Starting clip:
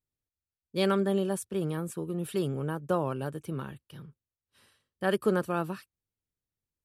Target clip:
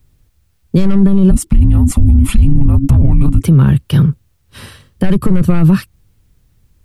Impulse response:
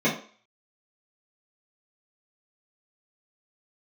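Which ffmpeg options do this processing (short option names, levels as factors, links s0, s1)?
-filter_complex "[0:a]asplit=3[s0][s1][s2];[s0]afade=t=out:st=1.3:d=0.02[s3];[s1]afreqshift=-420,afade=t=in:st=1.3:d=0.02,afade=t=out:st=3.42:d=0.02[s4];[s2]afade=t=in:st=3.42:d=0.02[s5];[s3][s4][s5]amix=inputs=3:normalize=0,aeval=exprs='0.211*sin(PI/2*2.24*val(0)/0.211)':c=same,bass=f=250:g=9,treble=f=4000:g=-2,acrossover=split=220[s6][s7];[s7]acompressor=threshold=0.02:ratio=3[s8];[s6][s8]amix=inputs=2:normalize=0,lowshelf=f=60:g=9.5,alimiter=level_in=8.41:limit=0.891:release=50:level=0:latency=1,volume=0.891"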